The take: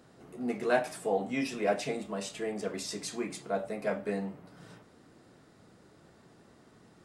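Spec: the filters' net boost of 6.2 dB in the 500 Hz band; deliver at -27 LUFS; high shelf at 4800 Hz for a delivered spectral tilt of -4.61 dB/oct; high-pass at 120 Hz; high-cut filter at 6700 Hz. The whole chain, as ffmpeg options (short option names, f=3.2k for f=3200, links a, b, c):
-af "highpass=120,lowpass=6.7k,equalizer=f=500:t=o:g=7.5,highshelf=f=4.8k:g=3.5,volume=2dB"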